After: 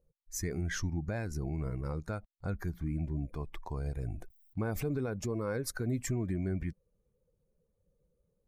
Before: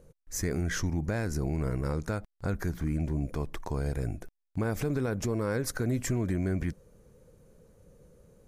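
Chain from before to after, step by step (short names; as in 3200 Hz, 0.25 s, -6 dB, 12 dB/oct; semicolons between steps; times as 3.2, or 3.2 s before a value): per-bin expansion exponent 1.5; 3.93–5.04 sustainer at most 51 dB/s; gain -2 dB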